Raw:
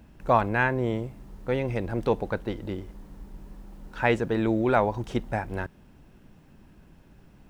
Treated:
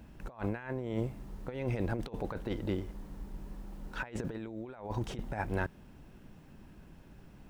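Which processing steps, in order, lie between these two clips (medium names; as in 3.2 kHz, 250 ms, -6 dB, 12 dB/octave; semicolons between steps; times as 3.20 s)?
compressor with a negative ratio -30 dBFS, ratio -0.5; trim -5 dB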